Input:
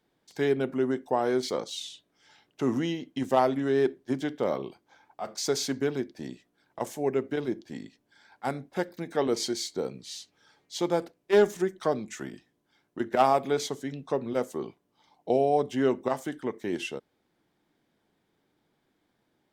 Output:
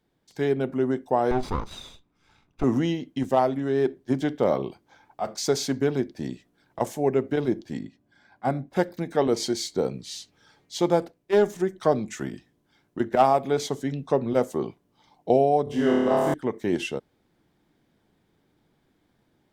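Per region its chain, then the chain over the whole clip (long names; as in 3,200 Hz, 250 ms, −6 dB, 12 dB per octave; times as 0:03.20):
0:01.31–0:02.64: lower of the sound and its delayed copy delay 0.82 ms + low-pass filter 2,400 Hz 6 dB per octave
0:07.79–0:08.71: high-shelf EQ 2,500 Hz −9 dB + notch comb filter 450 Hz
0:15.64–0:16.34: parametric band 6,800 Hz −4.5 dB 0.25 octaves + flutter between parallel walls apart 4.7 metres, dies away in 1.5 s
whole clip: low-shelf EQ 180 Hz +10 dB; speech leveller within 3 dB 0.5 s; dynamic equaliser 710 Hz, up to +4 dB, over −37 dBFS, Q 1.3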